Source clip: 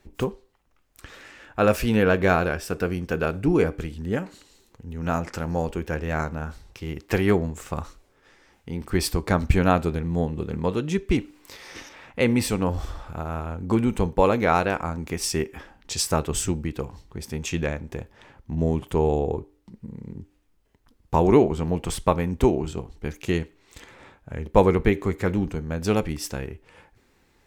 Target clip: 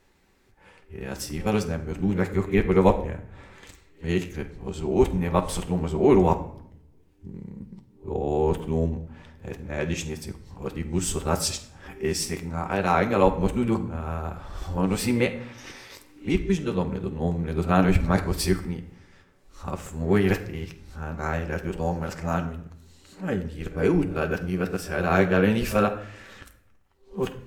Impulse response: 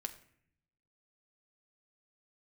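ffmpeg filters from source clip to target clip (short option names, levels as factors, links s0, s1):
-filter_complex "[0:a]areverse[s0];[1:a]atrim=start_sample=2205,asetrate=39249,aresample=44100[s1];[s0][s1]afir=irnorm=-1:irlink=0"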